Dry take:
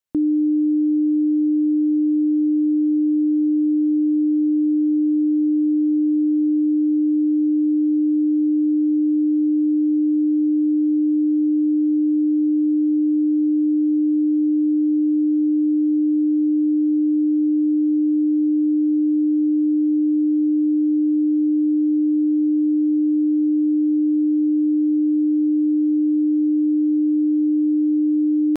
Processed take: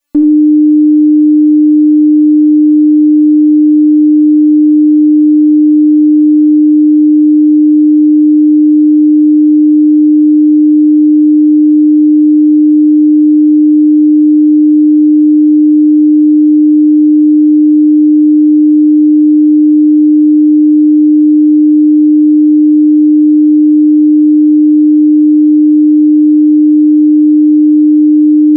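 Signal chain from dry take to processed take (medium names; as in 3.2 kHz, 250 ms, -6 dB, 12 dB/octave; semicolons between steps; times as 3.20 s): feedback comb 290 Hz, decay 0.55 s, harmonics all, mix 100%; loudness maximiser +35 dB; trim -1 dB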